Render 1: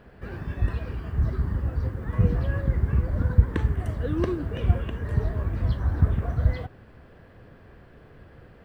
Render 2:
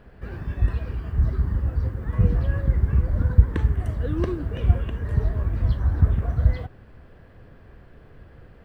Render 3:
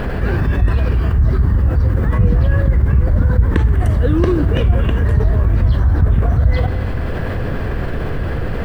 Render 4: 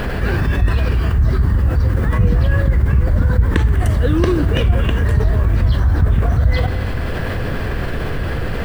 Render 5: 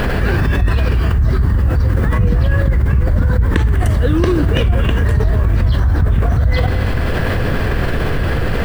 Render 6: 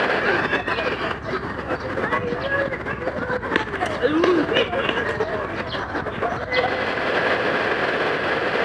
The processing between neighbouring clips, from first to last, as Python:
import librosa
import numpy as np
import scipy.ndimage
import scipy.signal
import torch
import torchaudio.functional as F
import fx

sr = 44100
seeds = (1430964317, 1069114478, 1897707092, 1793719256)

y1 = fx.low_shelf(x, sr, hz=62.0, db=9.5)
y1 = F.gain(torch.from_numpy(y1), -1.0).numpy()
y2 = fx.rev_schroeder(y1, sr, rt60_s=1.5, comb_ms=33, drr_db=17.0)
y2 = fx.env_flatten(y2, sr, amount_pct=70)
y3 = fx.high_shelf(y2, sr, hz=2000.0, db=8.5)
y3 = F.gain(torch.from_numpy(y3), -1.0).numpy()
y4 = fx.env_flatten(y3, sr, amount_pct=50)
y4 = F.gain(torch.from_numpy(y4), -1.5).numpy()
y5 = fx.bandpass_edges(y4, sr, low_hz=420.0, high_hz=4300.0)
y5 = y5 + 10.0 ** (-18.5 / 20.0) * np.pad(y5, (int(72 * sr / 1000.0), 0))[:len(y5)]
y5 = F.gain(torch.from_numpy(y5), 3.0).numpy()